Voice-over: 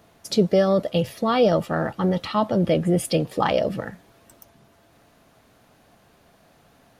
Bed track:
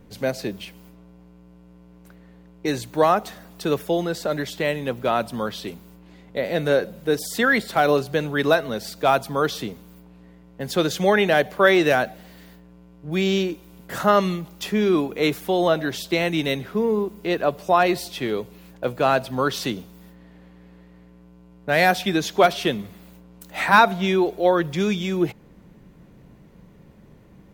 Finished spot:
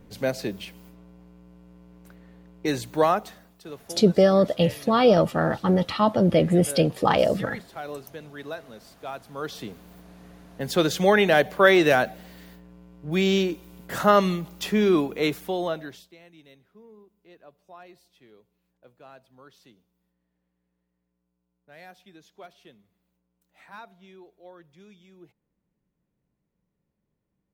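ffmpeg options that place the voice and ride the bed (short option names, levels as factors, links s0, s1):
-filter_complex "[0:a]adelay=3650,volume=1.12[s0];[1:a]volume=5.96,afade=t=out:st=2.94:d=0.7:silence=0.158489,afade=t=in:st=9.26:d=0.94:silence=0.141254,afade=t=out:st=14.89:d=1.24:silence=0.0354813[s1];[s0][s1]amix=inputs=2:normalize=0"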